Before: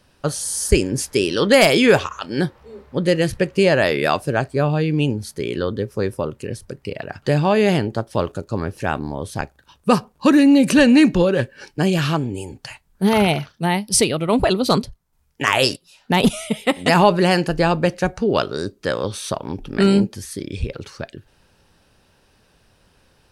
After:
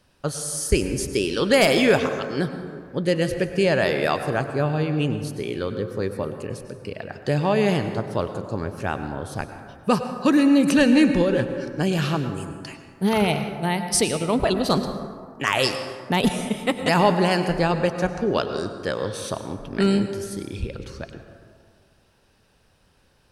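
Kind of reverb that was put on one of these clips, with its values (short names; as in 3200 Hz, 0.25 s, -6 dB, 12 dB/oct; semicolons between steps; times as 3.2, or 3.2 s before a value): plate-style reverb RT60 2 s, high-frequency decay 0.4×, pre-delay 85 ms, DRR 8 dB; gain -4.5 dB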